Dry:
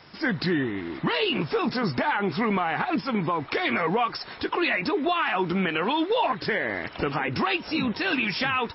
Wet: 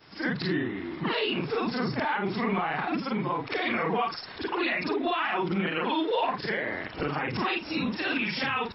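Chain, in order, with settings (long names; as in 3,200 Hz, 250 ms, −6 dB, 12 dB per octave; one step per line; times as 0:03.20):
every overlapping window played backwards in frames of 112 ms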